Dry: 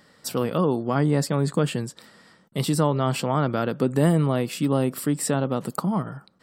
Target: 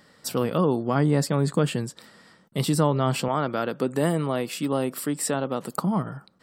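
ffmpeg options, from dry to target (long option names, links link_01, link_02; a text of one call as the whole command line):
ffmpeg -i in.wav -filter_complex "[0:a]asettb=1/sr,asplit=3[link_01][link_02][link_03];[link_01]atrim=end=3.284[link_04];[link_02]atrim=start=3.28:end=5.74,asetpts=PTS-STARTPTS,afade=type=in:duration=0.004:curve=qsin,afade=type=out:start_time=2.456:duration=0.004:curve=qsin,highpass=frequency=310:poles=1[link_05];[link_03]atrim=start=5.736[link_06];[link_04][link_05]acrossfade=duration=0.004:curve1=hsin:curve2=qsin[link_07];[link_07][link_06]acrossfade=duration=0.004:curve1=qsin:curve2=hsin" out.wav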